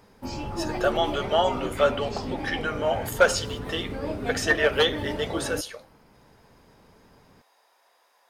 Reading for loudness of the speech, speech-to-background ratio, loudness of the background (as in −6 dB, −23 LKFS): −26.0 LKFS, 7.0 dB, −33.0 LKFS